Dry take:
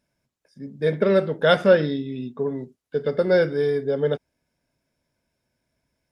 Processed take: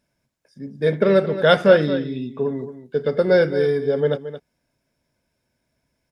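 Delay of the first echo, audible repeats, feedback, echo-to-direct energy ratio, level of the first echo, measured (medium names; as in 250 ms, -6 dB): 223 ms, 1, no regular repeats, -12.5 dB, -12.5 dB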